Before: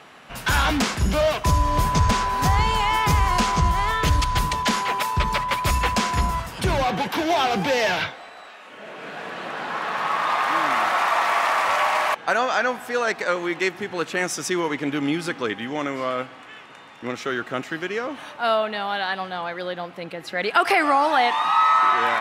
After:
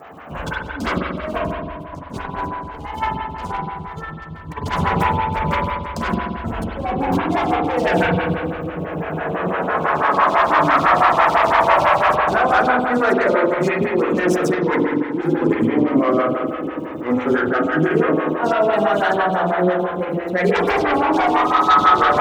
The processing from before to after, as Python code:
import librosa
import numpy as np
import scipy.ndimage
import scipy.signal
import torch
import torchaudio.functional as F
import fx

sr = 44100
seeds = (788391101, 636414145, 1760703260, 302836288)

p1 = fx.wiener(x, sr, points=9)
p2 = fx.chorus_voices(p1, sr, voices=6, hz=0.57, base_ms=12, depth_ms=1.7, mix_pct=45)
p3 = fx.fold_sine(p2, sr, drive_db=12, ceiling_db=-7.0)
p4 = fx.low_shelf(p3, sr, hz=260.0, db=11.5)
p5 = p4 + fx.echo_bbd(p4, sr, ms=232, stages=1024, feedback_pct=80, wet_db=-13.5, dry=0)
p6 = fx.dmg_crackle(p5, sr, seeds[0], per_s=470.0, level_db=-37.0)
p7 = fx.over_compress(p6, sr, threshold_db=-10.0, ratio=-0.5)
p8 = scipy.signal.sosfilt(scipy.signal.butter(2, 52.0, 'highpass', fs=sr, output='sos'), p7)
p9 = fx.peak_eq(p8, sr, hz=11000.0, db=-4.5, octaves=0.88)
p10 = fx.rev_spring(p9, sr, rt60_s=1.8, pass_ms=(44,), chirp_ms=65, drr_db=-2.5)
p11 = fx.stagger_phaser(p10, sr, hz=6.0)
y = p11 * librosa.db_to_amplitude(-9.5)